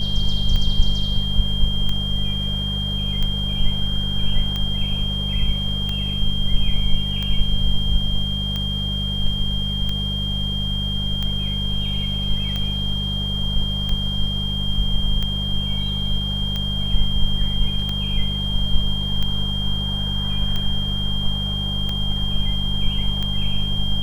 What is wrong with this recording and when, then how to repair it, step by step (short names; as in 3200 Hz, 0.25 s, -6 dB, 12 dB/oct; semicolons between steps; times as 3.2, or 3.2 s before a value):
hum 50 Hz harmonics 4 -25 dBFS
tick 45 rpm -13 dBFS
tone 3200 Hz -25 dBFS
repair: de-click; de-hum 50 Hz, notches 4; notch 3200 Hz, Q 30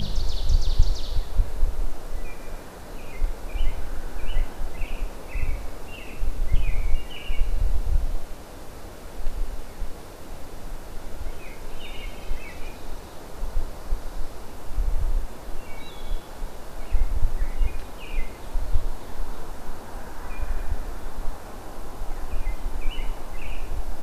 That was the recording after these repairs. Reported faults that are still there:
none